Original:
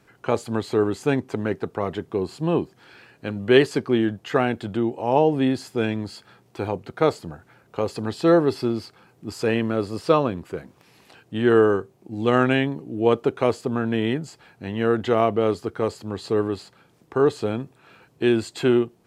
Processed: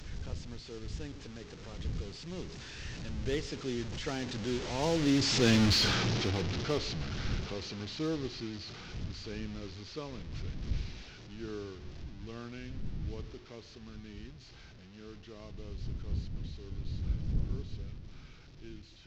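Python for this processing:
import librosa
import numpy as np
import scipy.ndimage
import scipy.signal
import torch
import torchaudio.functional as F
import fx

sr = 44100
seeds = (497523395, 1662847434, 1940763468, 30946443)

p1 = fx.delta_mod(x, sr, bps=32000, step_db=-21.5)
p2 = fx.doppler_pass(p1, sr, speed_mps=22, closest_m=6.8, pass_at_s=5.66)
p3 = fx.dmg_wind(p2, sr, seeds[0], corner_hz=98.0, level_db=-45.0)
p4 = 10.0 ** (-27.5 / 20.0) * (np.abs((p3 / 10.0 ** (-27.5 / 20.0) + 3.0) % 4.0 - 2.0) - 1.0)
p5 = p3 + (p4 * librosa.db_to_amplitude(-11.0))
p6 = fx.peak_eq(p5, sr, hz=850.0, db=-9.5, octaves=2.4)
p7 = p6 + 10.0 ** (-20.5 / 20.0) * np.pad(p6, (int(136 * sr / 1000.0), 0))[:len(p6)]
y = p7 * librosa.db_to_amplitude(2.5)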